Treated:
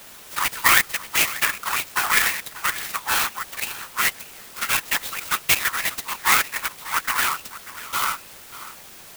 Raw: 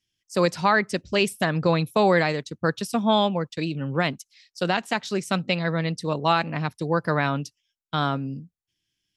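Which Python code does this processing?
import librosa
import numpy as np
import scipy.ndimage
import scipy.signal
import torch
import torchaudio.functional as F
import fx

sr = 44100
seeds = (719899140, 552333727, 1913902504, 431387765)

p1 = fx.self_delay(x, sr, depth_ms=0.18)
p2 = scipy.signal.sosfilt(scipy.signal.butter(8, 1000.0, 'highpass', fs=sr, output='sos'), p1)
p3 = fx.peak_eq(p2, sr, hz=2100.0, db=6.5, octaves=1.4)
p4 = fx.notch(p3, sr, hz=1600.0, q=11.0)
p5 = fx.high_shelf(p4, sr, hz=4500.0, db=10.0, at=(5.44, 6.0))
p6 = fx.quant_dither(p5, sr, seeds[0], bits=6, dither='triangular')
p7 = p5 + (p6 * librosa.db_to_amplitude(-5.5))
p8 = fx.whisperise(p7, sr, seeds[1])
p9 = p8 + 10.0 ** (-16.0 / 20.0) * np.pad(p8, (int(589 * sr / 1000.0), 0))[:len(p8)]
y = fx.clock_jitter(p9, sr, seeds[2], jitter_ms=0.054)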